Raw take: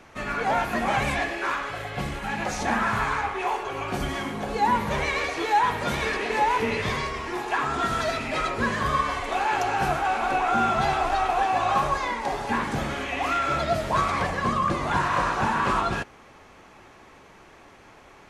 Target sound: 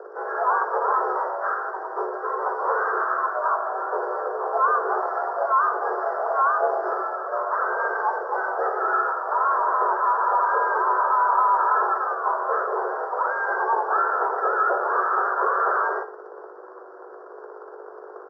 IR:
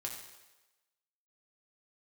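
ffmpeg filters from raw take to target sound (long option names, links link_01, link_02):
-filter_complex "[0:a]aemphasis=mode=reproduction:type=50kf,aeval=exprs='val(0)+0.0158*(sin(2*PI*50*n/s)+sin(2*PI*2*50*n/s)/2+sin(2*PI*3*50*n/s)/3+sin(2*PI*4*50*n/s)/4+sin(2*PI*5*50*n/s)/5)':channel_layout=same,aresample=11025,asoftclip=type=hard:threshold=-21dB,aresample=44100,asplit=4[link_01][link_02][link_03][link_04];[link_02]asetrate=33038,aresample=44100,atempo=1.33484,volume=-17dB[link_05];[link_03]asetrate=37084,aresample=44100,atempo=1.18921,volume=-16dB[link_06];[link_04]asetrate=58866,aresample=44100,atempo=0.749154,volume=-5dB[link_07];[link_01][link_05][link_06][link_07]amix=inputs=4:normalize=0,acrusher=bits=2:mode=log:mix=0:aa=0.000001,asuperstop=centerf=2600:order=12:qfactor=0.69,asplit=2[link_08][link_09];[1:a]atrim=start_sample=2205,afade=type=out:start_time=0.32:duration=0.01,atrim=end_sample=14553,asetrate=57330,aresample=44100[link_10];[link_09][link_10]afir=irnorm=-1:irlink=0,volume=-0.5dB[link_11];[link_08][link_11]amix=inputs=2:normalize=0,highpass=frequency=180:width_type=q:width=0.5412,highpass=frequency=180:width_type=q:width=1.307,lowpass=frequency=3100:width_type=q:width=0.5176,lowpass=frequency=3100:width_type=q:width=0.7071,lowpass=frequency=3100:width_type=q:width=1.932,afreqshift=230"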